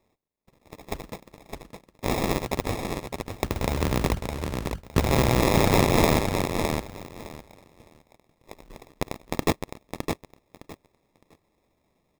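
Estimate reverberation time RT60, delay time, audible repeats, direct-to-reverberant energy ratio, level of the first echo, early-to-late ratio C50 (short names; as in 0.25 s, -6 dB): none, 0.611 s, 3, none, -5.5 dB, none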